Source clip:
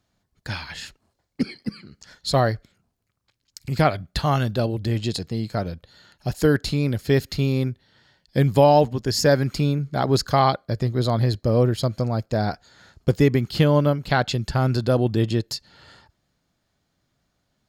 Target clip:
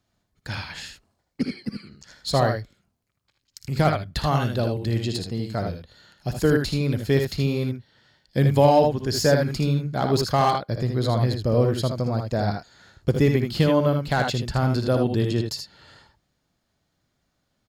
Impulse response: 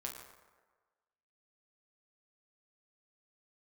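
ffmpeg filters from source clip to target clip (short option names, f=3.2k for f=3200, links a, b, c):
-filter_complex "[0:a]aecho=1:1:58|78:0.282|0.501,acrossover=split=840[a][b];[b]volume=19dB,asoftclip=hard,volume=-19dB[c];[a][c]amix=inputs=2:normalize=0,volume=-2dB"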